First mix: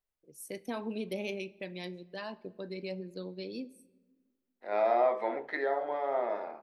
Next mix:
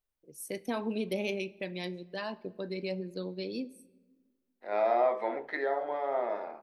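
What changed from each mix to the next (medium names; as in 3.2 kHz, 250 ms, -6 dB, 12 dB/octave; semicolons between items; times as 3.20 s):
first voice +3.5 dB; master: add band-stop 7.2 kHz, Q 21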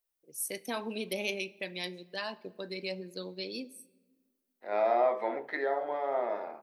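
first voice: add tilt EQ +2.5 dB/octave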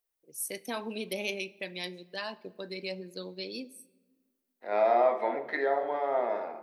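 second voice: send on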